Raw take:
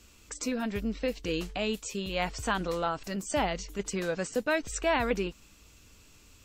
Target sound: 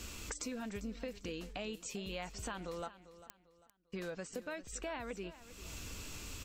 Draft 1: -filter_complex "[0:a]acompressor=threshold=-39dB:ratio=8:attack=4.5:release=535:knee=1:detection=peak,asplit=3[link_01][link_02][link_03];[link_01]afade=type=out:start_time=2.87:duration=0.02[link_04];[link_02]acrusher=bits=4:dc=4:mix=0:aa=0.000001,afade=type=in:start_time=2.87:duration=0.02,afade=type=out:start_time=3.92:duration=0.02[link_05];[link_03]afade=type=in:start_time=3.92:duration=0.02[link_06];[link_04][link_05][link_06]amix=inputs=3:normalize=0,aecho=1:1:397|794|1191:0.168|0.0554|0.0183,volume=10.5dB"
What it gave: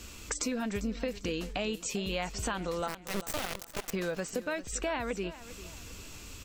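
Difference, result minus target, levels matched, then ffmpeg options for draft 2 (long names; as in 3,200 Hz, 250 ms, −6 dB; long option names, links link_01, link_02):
downward compressor: peak gain reduction −9 dB
-filter_complex "[0:a]acompressor=threshold=-49dB:ratio=8:attack=4.5:release=535:knee=1:detection=peak,asplit=3[link_01][link_02][link_03];[link_01]afade=type=out:start_time=2.87:duration=0.02[link_04];[link_02]acrusher=bits=4:dc=4:mix=0:aa=0.000001,afade=type=in:start_time=2.87:duration=0.02,afade=type=out:start_time=3.92:duration=0.02[link_05];[link_03]afade=type=in:start_time=3.92:duration=0.02[link_06];[link_04][link_05][link_06]amix=inputs=3:normalize=0,aecho=1:1:397|794|1191:0.168|0.0554|0.0183,volume=10.5dB"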